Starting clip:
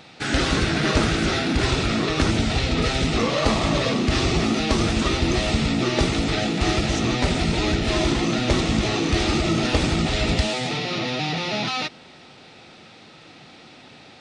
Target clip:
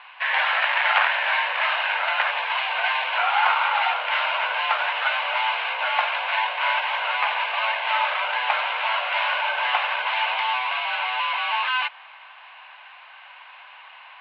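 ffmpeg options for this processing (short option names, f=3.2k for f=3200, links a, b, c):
-filter_complex "[0:a]asettb=1/sr,asplit=3[a][b][c];[a]atrim=end=0.624[d];[b]atrim=start=0.62:end=1.11,asetpts=PTS-STARTPTS,afade=t=in:d=0.004:c=qsin,afade=t=out:st=0.486:d=0.004:c=qsin,aeval=exprs='0.376*(cos(1*acos(clip(val(0)/0.376,-1,1)))-cos(1*PI/2))+0.168*(cos(4*acos(clip(val(0)/0.376,-1,1)))-cos(4*PI/2))+0.133*(cos(6*acos(clip(val(0)/0.376,-1,1)))-cos(6*PI/2))':c=same[e];[c]atrim=start=1.106[f];[d][e]acrossfade=d=0.004:c1=hsin:c2=qsin[g];[g][f]acrossfade=d=0.004:c1=qsin:c2=hsin,highpass=f=570:t=q:w=0.5412,highpass=f=570:t=q:w=1.307,lowpass=f=2.7k:t=q:w=0.5176,lowpass=f=2.7k:t=q:w=0.7071,lowpass=f=2.7k:t=q:w=1.932,afreqshift=250,volume=5.5dB"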